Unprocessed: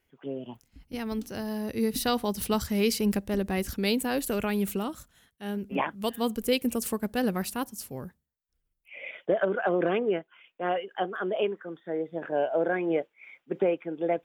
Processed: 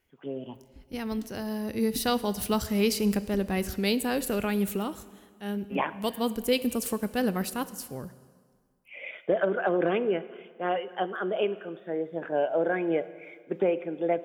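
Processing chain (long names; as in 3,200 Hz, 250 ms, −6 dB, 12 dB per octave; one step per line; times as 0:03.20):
dense smooth reverb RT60 1.8 s, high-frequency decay 0.85×, DRR 14 dB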